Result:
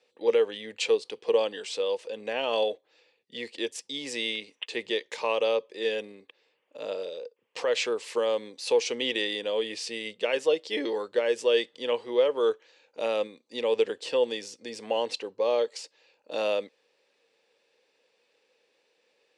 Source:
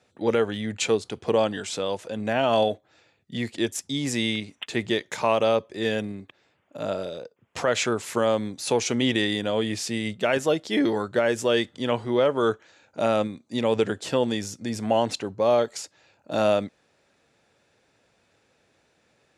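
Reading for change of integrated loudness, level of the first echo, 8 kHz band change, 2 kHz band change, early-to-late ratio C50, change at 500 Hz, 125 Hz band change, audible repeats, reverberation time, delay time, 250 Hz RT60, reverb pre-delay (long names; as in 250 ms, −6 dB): −3.5 dB, no echo audible, −7.5 dB, −4.0 dB, no reverb audible, −2.0 dB, below −20 dB, no echo audible, no reverb audible, no echo audible, no reverb audible, no reverb audible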